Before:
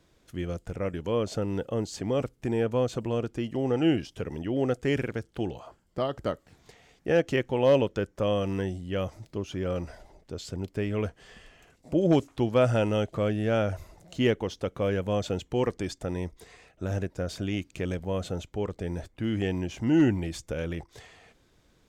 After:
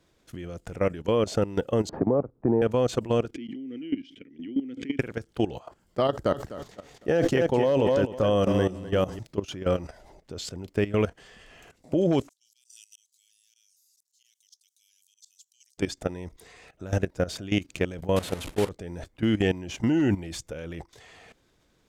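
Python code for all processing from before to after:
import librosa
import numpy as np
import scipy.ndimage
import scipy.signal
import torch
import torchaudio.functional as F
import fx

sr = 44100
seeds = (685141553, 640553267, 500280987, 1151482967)

y = fx.chain(x, sr, fx.lowpass(hz=1100.0, slope=24),
    fx.low_shelf(hz=110.0, db=-4.5),
    fx.band_squash(depth_pct=70), at=(1.89, 2.62))
y = fx.chain(y, sr, fx.vowel_filter(vowel='i'),
    fx.pre_swell(db_per_s=95.0), at=(3.34, 4.99))
y = fx.chain(y, sr, fx.peak_eq(hz=2400.0, db=-5.5, octaves=0.78),
    fx.echo_feedback(ms=254, feedback_pct=28, wet_db=-8.0),
    fx.sustainer(db_per_s=100.0), at=(6.07, 9.19))
y = fx.chain(y, sr, fx.cheby2_highpass(hz=1200.0, order=4, stop_db=70),
    fx.auto_swell(attack_ms=158.0), at=(12.29, 15.78))
y = fx.chain(y, sr, fx.delta_mod(bps=64000, step_db=-31.0),
    fx.gate_hold(open_db=-27.0, close_db=-33.0, hold_ms=71.0, range_db=-21, attack_ms=1.4, release_ms=100.0),
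    fx.peak_eq(hz=6000.0, db=-4.5, octaves=0.9), at=(18.16, 18.69))
y = fx.low_shelf(y, sr, hz=130.0, db=-4.0)
y = fx.level_steps(y, sr, step_db=15)
y = F.gain(torch.from_numpy(y), 8.5).numpy()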